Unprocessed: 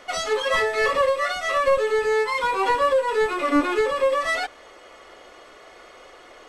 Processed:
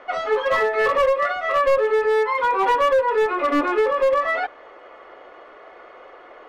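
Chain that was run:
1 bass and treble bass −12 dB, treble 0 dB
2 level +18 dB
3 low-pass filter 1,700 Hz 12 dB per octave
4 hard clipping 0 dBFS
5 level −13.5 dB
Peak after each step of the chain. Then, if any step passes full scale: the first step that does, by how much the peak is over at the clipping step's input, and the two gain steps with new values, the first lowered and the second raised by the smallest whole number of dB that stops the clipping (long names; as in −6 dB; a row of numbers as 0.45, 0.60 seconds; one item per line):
−10.0, +8.0, +7.5, 0.0, −13.5 dBFS
step 2, 7.5 dB
step 2 +10 dB, step 5 −5.5 dB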